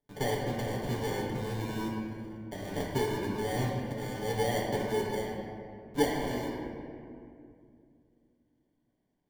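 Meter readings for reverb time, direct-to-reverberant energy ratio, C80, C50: 2.5 s, -4.0 dB, 2.0 dB, 0.5 dB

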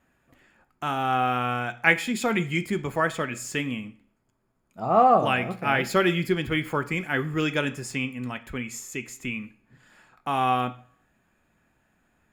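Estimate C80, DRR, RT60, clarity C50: 20.5 dB, 9.5 dB, 0.50 s, 17.0 dB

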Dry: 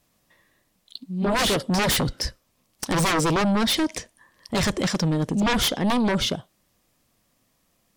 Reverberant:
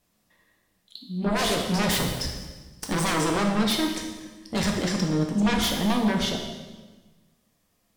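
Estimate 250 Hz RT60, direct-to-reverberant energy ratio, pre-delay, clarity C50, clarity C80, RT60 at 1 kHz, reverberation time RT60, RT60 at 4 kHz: 1.6 s, 1.0 dB, 4 ms, 4.5 dB, 6.0 dB, 1.2 s, 1.3 s, 1.2 s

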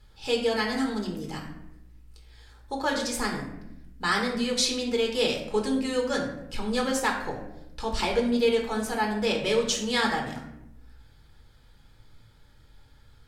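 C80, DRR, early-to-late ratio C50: 8.5 dB, -0.5 dB, 6.0 dB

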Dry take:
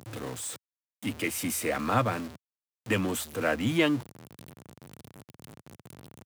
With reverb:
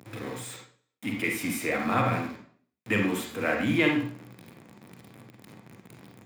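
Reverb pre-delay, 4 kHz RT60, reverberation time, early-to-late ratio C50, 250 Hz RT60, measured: 37 ms, 0.45 s, 0.55 s, 4.5 dB, 0.60 s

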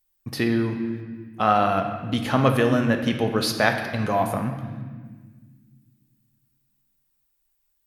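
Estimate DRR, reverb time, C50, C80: 4.0 dB, 1.6 s, 6.5 dB, 8.0 dB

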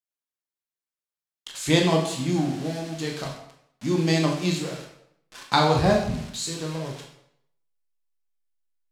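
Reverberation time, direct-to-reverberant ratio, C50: 0.70 s, 0.0 dB, 5.5 dB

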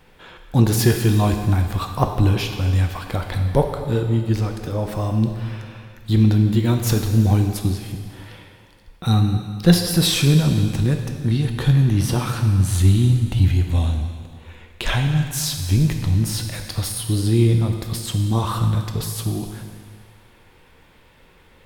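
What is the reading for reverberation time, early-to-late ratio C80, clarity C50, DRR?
2.1 s, 7.0 dB, 6.0 dB, 4.0 dB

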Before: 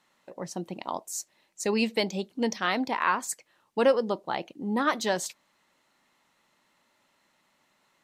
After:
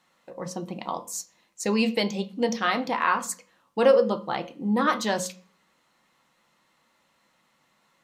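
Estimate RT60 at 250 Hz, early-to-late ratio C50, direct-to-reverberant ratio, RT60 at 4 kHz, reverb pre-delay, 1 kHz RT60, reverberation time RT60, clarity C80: 0.60 s, 15.5 dB, 5.0 dB, 0.40 s, 3 ms, 0.35 s, 0.40 s, 20.0 dB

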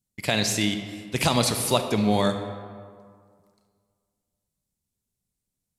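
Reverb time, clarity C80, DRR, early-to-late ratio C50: 2.0 s, 9.0 dB, 7.0 dB, 8.0 dB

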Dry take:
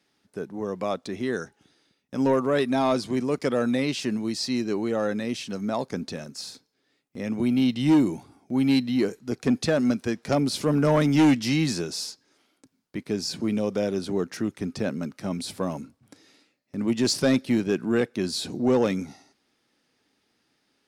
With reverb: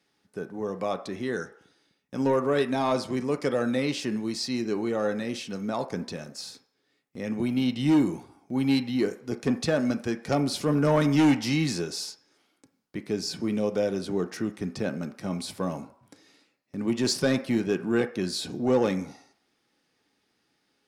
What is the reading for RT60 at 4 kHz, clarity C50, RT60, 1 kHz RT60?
0.60 s, 14.0 dB, 0.60 s, 0.70 s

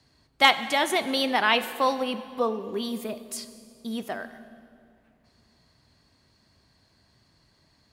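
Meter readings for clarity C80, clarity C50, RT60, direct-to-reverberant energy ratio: 13.0 dB, 12.5 dB, 2.5 s, 11.5 dB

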